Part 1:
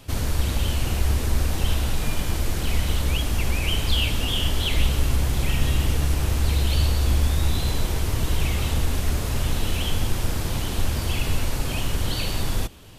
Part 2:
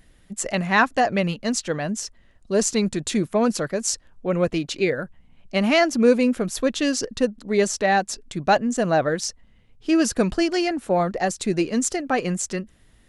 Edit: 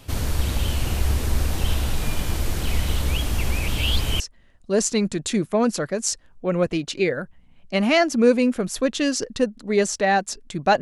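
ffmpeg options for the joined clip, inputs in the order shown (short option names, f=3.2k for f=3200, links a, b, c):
-filter_complex "[0:a]apad=whole_dur=10.81,atrim=end=10.81,asplit=2[a][b];[a]atrim=end=3.682[c];[b]atrim=start=3.678:end=4.202,asetpts=PTS-STARTPTS,areverse[d];[1:a]atrim=start=2.008:end=8.62[e];[c][d]acrossfade=d=0.004:c1=hsin:c2=hsin[f];[f][e]acrossfade=d=0.004:c1=hsin:c2=hsin"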